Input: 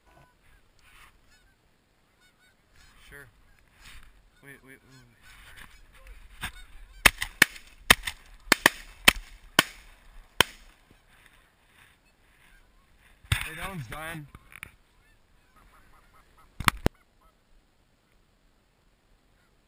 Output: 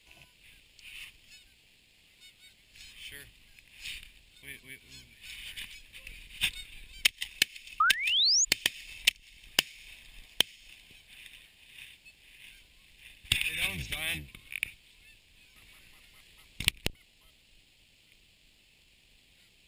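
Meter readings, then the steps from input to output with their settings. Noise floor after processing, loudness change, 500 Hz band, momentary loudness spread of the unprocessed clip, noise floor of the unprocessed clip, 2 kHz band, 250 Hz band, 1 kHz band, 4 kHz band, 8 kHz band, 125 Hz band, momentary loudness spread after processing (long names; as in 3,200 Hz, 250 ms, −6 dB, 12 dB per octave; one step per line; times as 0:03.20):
−63 dBFS, −4.0 dB, −13.5 dB, 18 LU, −66 dBFS, −6.5 dB, −13.0 dB, −6.5 dB, 0.0 dB, −0.5 dB, −9.0 dB, 24 LU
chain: sub-octave generator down 1 octave, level −1 dB
high shelf with overshoot 1,900 Hz +11.5 dB, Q 3
sound drawn into the spectrogram rise, 0:07.80–0:08.45, 1,200–7,100 Hz −12 dBFS
downward compressor 16 to 1, threshold −18 dBFS, peak gain reduction 24.5 dB
level −4.5 dB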